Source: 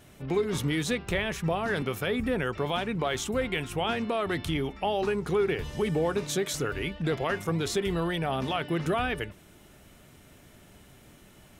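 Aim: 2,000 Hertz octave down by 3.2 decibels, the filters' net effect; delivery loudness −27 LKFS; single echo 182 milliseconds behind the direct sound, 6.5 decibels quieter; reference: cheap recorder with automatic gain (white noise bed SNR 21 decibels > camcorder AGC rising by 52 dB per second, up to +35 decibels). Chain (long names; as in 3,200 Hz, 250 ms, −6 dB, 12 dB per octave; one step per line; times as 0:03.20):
parametric band 2,000 Hz −4 dB
single-tap delay 182 ms −6.5 dB
white noise bed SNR 21 dB
camcorder AGC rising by 52 dB per second, up to +35 dB
level +1.5 dB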